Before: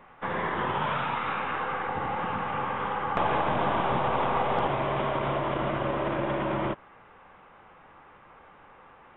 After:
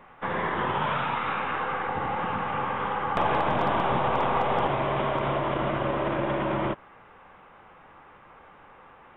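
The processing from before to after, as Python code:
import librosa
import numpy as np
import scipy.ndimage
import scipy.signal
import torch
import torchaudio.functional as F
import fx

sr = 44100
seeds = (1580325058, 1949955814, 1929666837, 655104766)

y = np.clip(x, -10.0 ** (-16.0 / 20.0), 10.0 ** (-16.0 / 20.0))
y = F.gain(torch.from_numpy(y), 1.5).numpy()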